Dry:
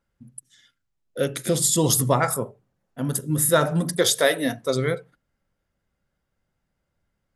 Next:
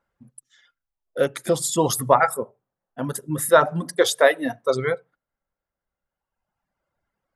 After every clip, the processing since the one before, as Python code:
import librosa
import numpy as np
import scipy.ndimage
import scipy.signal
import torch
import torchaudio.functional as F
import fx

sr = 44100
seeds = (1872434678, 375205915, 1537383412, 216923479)

y = fx.dereverb_blind(x, sr, rt60_s=1.7)
y = fx.peak_eq(y, sr, hz=910.0, db=13.0, octaves=2.7)
y = y * librosa.db_to_amplitude(-5.5)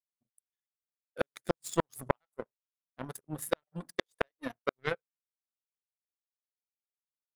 y = fx.gate_flip(x, sr, shuts_db=-9.0, range_db=-29)
y = fx.power_curve(y, sr, exponent=2.0)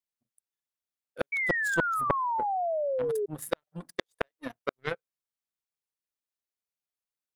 y = fx.spec_paint(x, sr, seeds[0], shape='fall', start_s=1.32, length_s=1.94, low_hz=400.0, high_hz=2300.0, level_db=-29.0)